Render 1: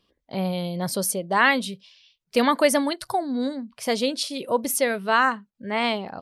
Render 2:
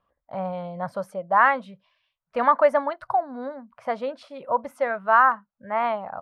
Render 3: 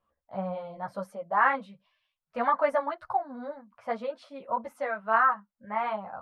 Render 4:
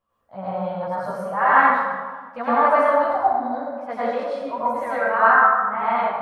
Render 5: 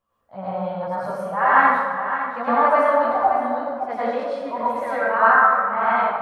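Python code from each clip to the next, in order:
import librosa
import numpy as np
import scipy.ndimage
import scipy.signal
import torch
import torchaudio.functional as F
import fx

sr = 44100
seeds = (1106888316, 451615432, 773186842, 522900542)

y1 = fx.curve_eq(x, sr, hz=(120.0, 390.0, 580.0, 1300.0, 2900.0, 4700.0, 11000.0), db=(0, -11, 6, 9, -12, -21, -28))
y1 = y1 * 10.0 ** (-4.0 / 20.0)
y2 = fx.ensemble(y1, sr)
y2 = y2 * 10.0 ** (-2.0 / 20.0)
y3 = fx.rev_plate(y2, sr, seeds[0], rt60_s=1.5, hf_ratio=0.55, predelay_ms=80, drr_db=-10.0)
y3 = y3 * 10.0 ** (-1.0 / 20.0)
y4 = y3 + 10.0 ** (-10.0 / 20.0) * np.pad(y3, (int(564 * sr / 1000.0), 0))[:len(y3)]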